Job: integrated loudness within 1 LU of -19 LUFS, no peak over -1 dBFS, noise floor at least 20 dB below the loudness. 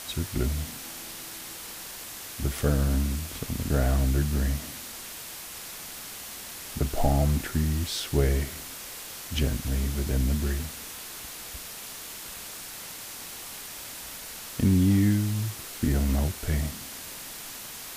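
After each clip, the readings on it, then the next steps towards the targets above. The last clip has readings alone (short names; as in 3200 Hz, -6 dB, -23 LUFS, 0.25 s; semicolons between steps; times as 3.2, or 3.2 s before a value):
noise floor -40 dBFS; noise floor target -50 dBFS; loudness -29.5 LUFS; peak -11.0 dBFS; loudness target -19.0 LUFS
-> denoiser 10 dB, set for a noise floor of -40 dBFS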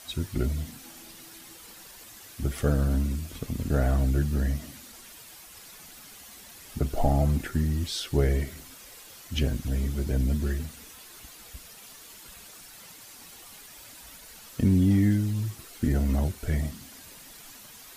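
noise floor -48 dBFS; loudness -27.5 LUFS; peak -11.0 dBFS; loudness target -19.0 LUFS
-> gain +8.5 dB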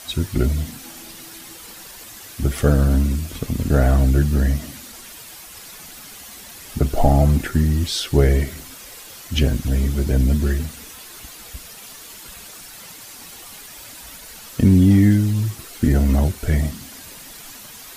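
loudness -19.0 LUFS; peak -2.5 dBFS; noise floor -40 dBFS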